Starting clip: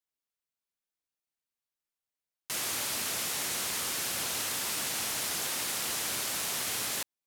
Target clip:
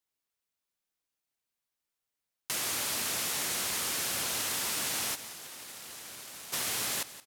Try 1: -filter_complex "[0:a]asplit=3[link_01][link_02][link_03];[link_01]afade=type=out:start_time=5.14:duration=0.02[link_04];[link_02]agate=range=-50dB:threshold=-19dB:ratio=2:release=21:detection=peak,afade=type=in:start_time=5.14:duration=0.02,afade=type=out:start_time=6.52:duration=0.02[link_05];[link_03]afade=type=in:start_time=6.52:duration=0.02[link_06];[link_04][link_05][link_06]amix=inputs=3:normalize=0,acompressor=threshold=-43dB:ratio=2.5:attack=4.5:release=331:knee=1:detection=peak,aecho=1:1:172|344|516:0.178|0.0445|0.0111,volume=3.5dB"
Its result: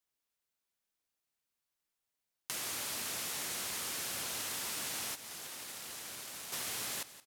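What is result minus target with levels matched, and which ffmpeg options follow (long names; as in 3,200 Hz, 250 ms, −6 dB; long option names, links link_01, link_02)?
downward compressor: peak gain reduction +6.5 dB
-filter_complex "[0:a]asplit=3[link_01][link_02][link_03];[link_01]afade=type=out:start_time=5.14:duration=0.02[link_04];[link_02]agate=range=-50dB:threshold=-19dB:ratio=2:release=21:detection=peak,afade=type=in:start_time=5.14:duration=0.02,afade=type=out:start_time=6.52:duration=0.02[link_05];[link_03]afade=type=in:start_time=6.52:duration=0.02[link_06];[link_04][link_05][link_06]amix=inputs=3:normalize=0,acompressor=threshold=-32.5dB:ratio=2.5:attack=4.5:release=331:knee=1:detection=peak,aecho=1:1:172|344|516:0.178|0.0445|0.0111,volume=3.5dB"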